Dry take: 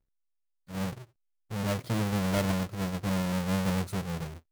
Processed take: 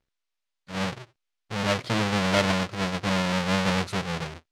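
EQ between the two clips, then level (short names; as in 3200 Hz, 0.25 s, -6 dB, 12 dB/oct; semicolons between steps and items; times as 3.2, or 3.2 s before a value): LPF 4100 Hz 12 dB/oct; tilt +2.5 dB/oct; +8.5 dB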